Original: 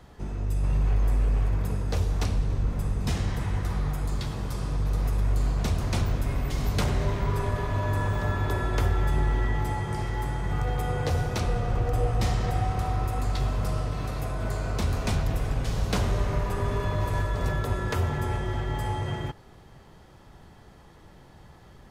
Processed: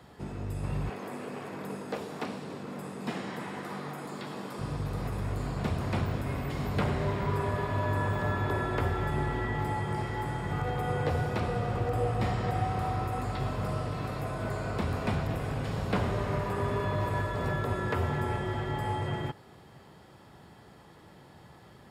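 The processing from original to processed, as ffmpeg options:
-filter_complex "[0:a]asettb=1/sr,asplit=3[a][b][c];[a]atrim=end=0.894[d];[b]atrim=start=0.89:end=4.59,asetpts=PTS-STARTPTS,afade=t=in:d=0.004:c=qsin,afade=t=out:st=3.696:d=0.004:c=qsin,highpass=f=190:w=0.5412,highpass=f=190:w=1.3066[e];[c]atrim=start=4.586[f];[d][e]acrossfade=d=0.004:c1=hsin:c2=qsin[g];[g][f]acrossfade=d=0.004:c1=qsin:c2=hsin,highpass=110,bandreject=f=6.1k:w=7.7,acrossover=split=2800[h][i];[i]acompressor=threshold=-51dB:ratio=4:attack=1:release=60[j];[h][j]amix=inputs=2:normalize=0"

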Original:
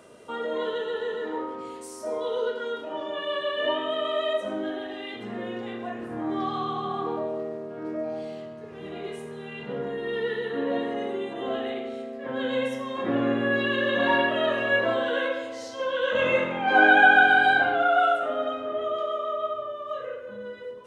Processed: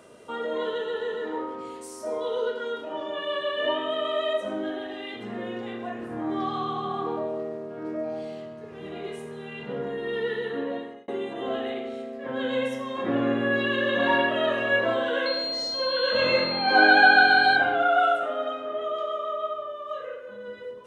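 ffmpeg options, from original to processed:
-filter_complex "[0:a]asettb=1/sr,asplit=3[a][b][c];[a]atrim=end=15.264[d];[b]atrim=start=15.26:end=17.56,asetpts=PTS-STARTPTS,afade=t=in:d=0.004:c=qsin,afade=t=out:st=2.296:d=0.004:c=qsin,aeval=exprs='val(0)+0.0398*sin(2*PI*4200*n/s)':c=same[e];[c]atrim=start=17.556[f];[d][e]acrossfade=d=0.004:c1=hsin:c2=qsin[g];[g][f]acrossfade=d=0.004:c1=qsin:c2=hsin,asettb=1/sr,asplit=3[h][i][j];[h]atrim=end=18.254[k];[i]atrim=start=18.25:end=20.48,asetpts=PTS-STARTPTS,afade=t=in:d=0.004:c=qsin,afade=t=out:st=2.226:d=0.004:c=qsin,lowshelf=f=210:g=-11[l];[j]atrim=start=20.476[m];[k][l]acrossfade=d=0.004:c1=hsin:c2=qsin[n];[n][m]acrossfade=d=0.004:c1=qsin:c2=hsin,asplit=2[o][p];[o]atrim=end=11.08,asetpts=PTS-STARTPTS,afade=t=out:st=10.49:d=0.59[q];[p]atrim=start=11.08,asetpts=PTS-STARTPTS,afade=t=in:d=0.004:c=hsin[r];[q][r]concat=n=2:v=0:a=1"

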